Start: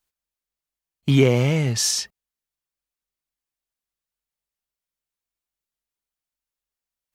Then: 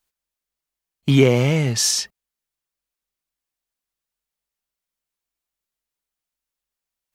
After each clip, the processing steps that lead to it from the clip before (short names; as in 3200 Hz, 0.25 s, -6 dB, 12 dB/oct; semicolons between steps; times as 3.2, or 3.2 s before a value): bell 84 Hz -6.5 dB 0.7 oct; gain +2.5 dB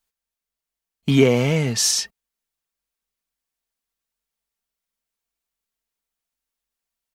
comb 4.4 ms, depth 31%; vocal rider 2 s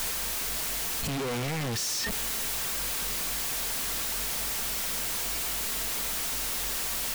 infinite clipping; gain -4 dB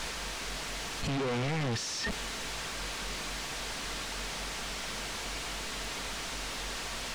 air absorption 90 m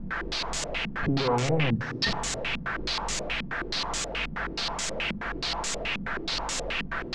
shoebox room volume 3000 m³, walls mixed, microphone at 0.77 m; stepped low-pass 9.4 Hz 210–7300 Hz; gain +3.5 dB